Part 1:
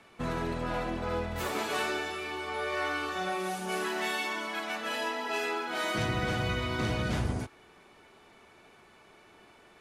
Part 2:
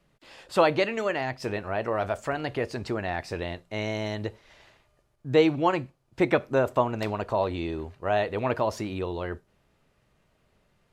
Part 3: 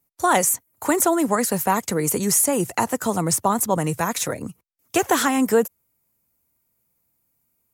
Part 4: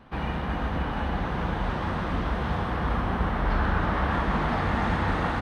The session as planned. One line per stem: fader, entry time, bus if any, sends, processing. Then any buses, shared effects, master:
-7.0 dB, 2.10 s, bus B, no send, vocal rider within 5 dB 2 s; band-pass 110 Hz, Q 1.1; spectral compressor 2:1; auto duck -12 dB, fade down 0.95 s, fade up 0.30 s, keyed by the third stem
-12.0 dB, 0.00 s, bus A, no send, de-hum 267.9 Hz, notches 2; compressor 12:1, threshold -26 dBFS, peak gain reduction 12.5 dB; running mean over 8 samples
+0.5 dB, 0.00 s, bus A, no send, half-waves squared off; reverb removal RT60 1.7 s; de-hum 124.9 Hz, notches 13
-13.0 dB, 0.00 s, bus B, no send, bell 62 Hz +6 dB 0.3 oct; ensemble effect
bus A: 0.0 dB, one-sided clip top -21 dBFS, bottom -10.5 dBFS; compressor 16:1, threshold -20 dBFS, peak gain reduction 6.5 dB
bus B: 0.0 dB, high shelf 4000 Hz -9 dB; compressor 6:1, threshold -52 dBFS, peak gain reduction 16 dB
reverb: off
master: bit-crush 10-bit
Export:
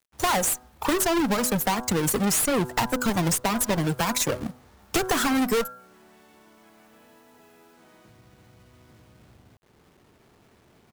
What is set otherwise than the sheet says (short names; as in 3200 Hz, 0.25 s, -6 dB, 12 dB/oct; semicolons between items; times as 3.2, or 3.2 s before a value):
stem 2: muted; stem 4 -13.0 dB -> -24.5 dB